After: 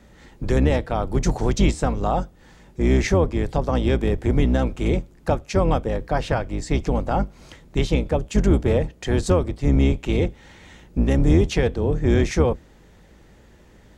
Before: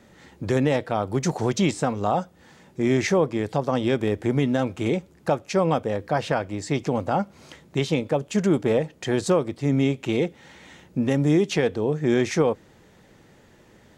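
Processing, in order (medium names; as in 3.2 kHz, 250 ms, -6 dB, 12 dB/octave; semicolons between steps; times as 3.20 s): octave divider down 2 oct, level +4 dB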